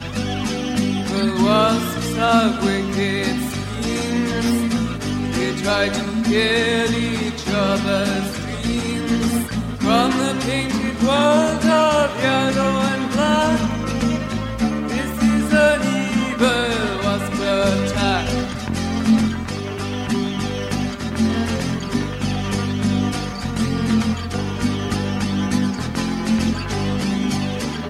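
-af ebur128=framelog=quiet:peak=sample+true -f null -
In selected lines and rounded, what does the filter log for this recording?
Integrated loudness:
  I:         -19.8 LUFS
  Threshold: -29.8 LUFS
Loudness range:
  LRA:         4.2 LU
  Threshold: -39.7 LUFS
  LRA low:   -21.7 LUFS
  LRA high:  -17.5 LUFS
Sample peak:
  Peak:       -3.5 dBFS
True peak:
  Peak:       -3.4 dBFS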